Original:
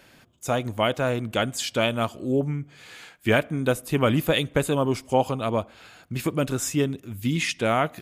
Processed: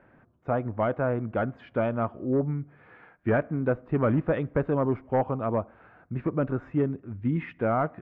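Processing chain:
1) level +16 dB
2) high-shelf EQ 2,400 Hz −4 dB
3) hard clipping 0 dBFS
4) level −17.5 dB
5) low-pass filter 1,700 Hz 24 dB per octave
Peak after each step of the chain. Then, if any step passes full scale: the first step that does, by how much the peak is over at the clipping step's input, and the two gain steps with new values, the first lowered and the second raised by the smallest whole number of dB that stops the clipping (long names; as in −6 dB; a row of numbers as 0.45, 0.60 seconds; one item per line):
+8.5, +8.0, 0.0, −17.5, −16.0 dBFS
step 1, 8.0 dB
step 1 +8 dB, step 4 −9.5 dB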